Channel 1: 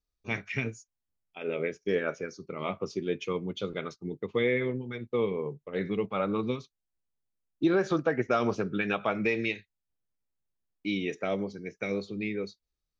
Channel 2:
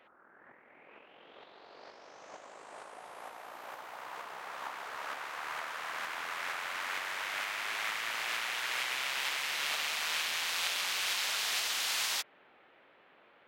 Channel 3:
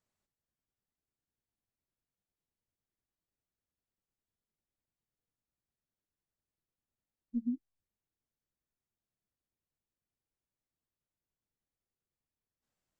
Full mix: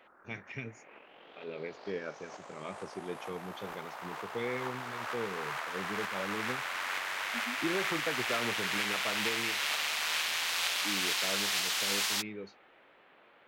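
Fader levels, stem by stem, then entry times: −9.5, +1.5, −10.5 decibels; 0.00, 0.00, 0.00 seconds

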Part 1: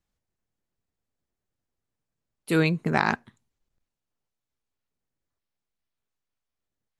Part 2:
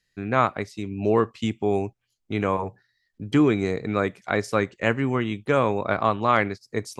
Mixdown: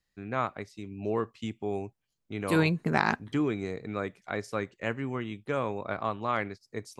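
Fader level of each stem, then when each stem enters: −2.5, −9.5 decibels; 0.00, 0.00 seconds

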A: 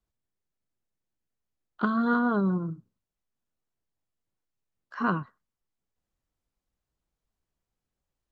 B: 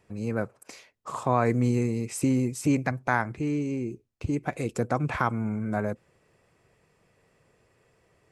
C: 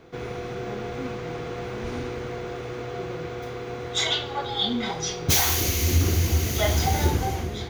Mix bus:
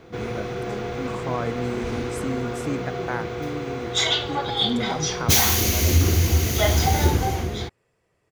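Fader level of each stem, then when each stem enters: −15.5, −5.0, +3.0 decibels; 0.35, 0.00, 0.00 seconds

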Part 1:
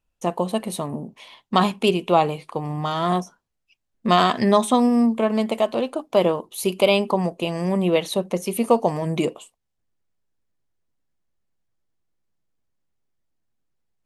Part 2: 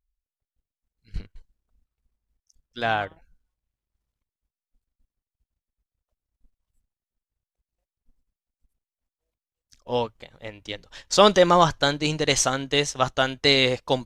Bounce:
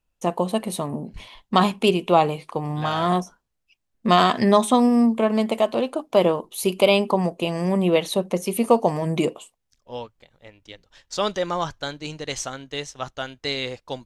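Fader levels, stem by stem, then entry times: +0.5, −8.5 decibels; 0.00, 0.00 seconds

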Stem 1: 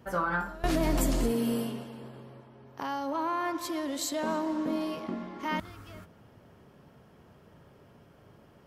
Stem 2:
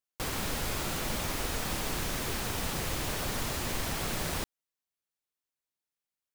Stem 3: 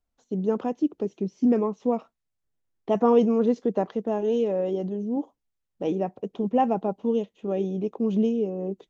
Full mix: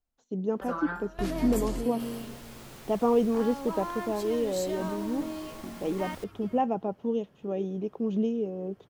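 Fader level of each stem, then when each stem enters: −5.5, −15.0, −4.5 decibels; 0.55, 1.80, 0.00 seconds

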